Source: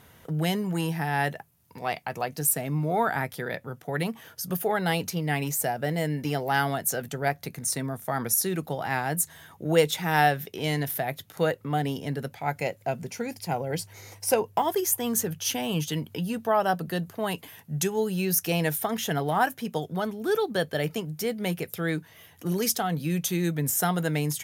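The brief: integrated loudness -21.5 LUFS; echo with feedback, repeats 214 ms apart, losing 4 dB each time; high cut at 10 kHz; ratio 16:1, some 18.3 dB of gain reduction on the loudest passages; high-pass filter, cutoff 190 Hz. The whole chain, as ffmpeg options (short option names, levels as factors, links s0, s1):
-af "highpass=190,lowpass=10000,acompressor=threshold=0.02:ratio=16,aecho=1:1:214|428|642|856|1070|1284|1498|1712|1926:0.631|0.398|0.25|0.158|0.0994|0.0626|0.0394|0.0249|0.0157,volume=5.96"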